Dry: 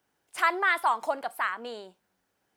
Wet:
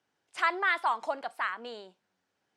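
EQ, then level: high-pass 83 Hz; distance through air 110 m; treble shelf 3.3 kHz +9 dB; -3.5 dB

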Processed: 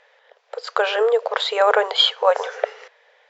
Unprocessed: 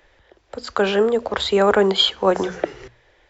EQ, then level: brick-wall FIR high-pass 420 Hz; distance through air 73 m; +2.5 dB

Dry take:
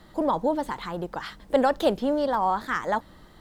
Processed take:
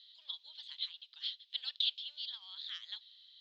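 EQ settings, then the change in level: Butterworth band-pass 3.6 kHz, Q 3.3; distance through air 140 m; differentiator; +16.5 dB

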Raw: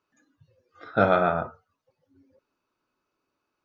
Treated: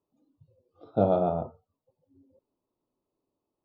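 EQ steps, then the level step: Butterworth band-stop 1.8 kHz, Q 0.6; distance through air 360 m; 0.0 dB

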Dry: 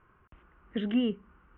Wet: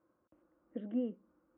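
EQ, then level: two resonant band-passes 410 Hz, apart 0.73 oct; +2.0 dB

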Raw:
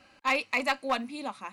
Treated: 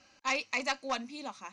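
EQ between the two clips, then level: resonant low-pass 6.1 kHz, resonance Q 5.3; -5.5 dB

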